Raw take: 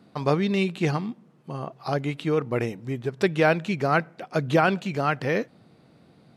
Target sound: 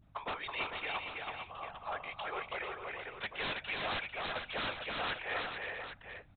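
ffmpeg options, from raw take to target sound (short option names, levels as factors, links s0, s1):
-af "agate=range=0.0224:threshold=0.00355:ratio=3:detection=peak,highpass=f=710:w=0.5412,highpass=f=710:w=1.3066,aeval=exprs='val(0)+0.00158*(sin(2*PI*50*n/s)+sin(2*PI*2*50*n/s)/2+sin(2*PI*3*50*n/s)/3+sin(2*PI*4*50*n/s)/4+sin(2*PI*5*50*n/s)/5)':c=same,afftfilt=real='hypot(re,im)*cos(2*PI*random(0))':imag='hypot(re,im)*sin(2*PI*random(1))':win_size=512:overlap=0.75,aresample=8000,aeval=exprs='0.0266*(abs(mod(val(0)/0.0266+3,4)-2)-1)':c=same,aresample=44100,aecho=1:1:326|447|799:0.708|0.473|0.335"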